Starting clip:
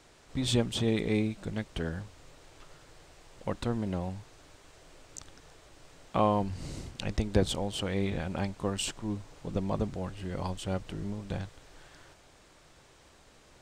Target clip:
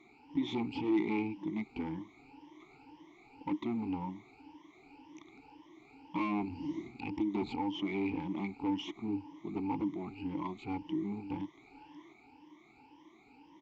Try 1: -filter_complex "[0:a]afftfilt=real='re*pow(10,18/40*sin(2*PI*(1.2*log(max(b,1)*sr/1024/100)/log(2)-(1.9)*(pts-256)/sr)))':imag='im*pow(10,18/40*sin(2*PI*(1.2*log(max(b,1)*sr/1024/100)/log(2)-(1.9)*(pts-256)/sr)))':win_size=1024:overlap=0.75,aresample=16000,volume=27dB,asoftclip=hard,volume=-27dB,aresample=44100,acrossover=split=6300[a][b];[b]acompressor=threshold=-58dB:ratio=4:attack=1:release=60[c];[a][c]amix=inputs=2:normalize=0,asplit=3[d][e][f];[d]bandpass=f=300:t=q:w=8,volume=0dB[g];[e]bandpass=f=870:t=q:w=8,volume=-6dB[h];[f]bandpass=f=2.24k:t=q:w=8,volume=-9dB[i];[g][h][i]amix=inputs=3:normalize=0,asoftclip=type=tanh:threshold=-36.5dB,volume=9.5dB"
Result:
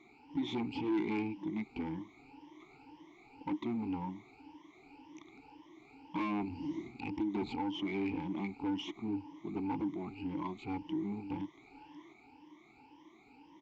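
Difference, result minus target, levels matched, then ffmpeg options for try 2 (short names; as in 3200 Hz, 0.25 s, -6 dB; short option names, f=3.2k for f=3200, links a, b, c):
soft clip: distortion +19 dB
-filter_complex "[0:a]afftfilt=real='re*pow(10,18/40*sin(2*PI*(1.2*log(max(b,1)*sr/1024/100)/log(2)-(1.9)*(pts-256)/sr)))':imag='im*pow(10,18/40*sin(2*PI*(1.2*log(max(b,1)*sr/1024/100)/log(2)-(1.9)*(pts-256)/sr)))':win_size=1024:overlap=0.75,aresample=16000,volume=27dB,asoftclip=hard,volume=-27dB,aresample=44100,acrossover=split=6300[a][b];[b]acompressor=threshold=-58dB:ratio=4:attack=1:release=60[c];[a][c]amix=inputs=2:normalize=0,asplit=3[d][e][f];[d]bandpass=f=300:t=q:w=8,volume=0dB[g];[e]bandpass=f=870:t=q:w=8,volume=-6dB[h];[f]bandpass=f=2.24k:t=q:w=8,volume=-9dB[i];[g][h][i]amix=inputs=3:normalize=0,asoftclip=type=tanh:threshold=-25dB,volume=9.5dB"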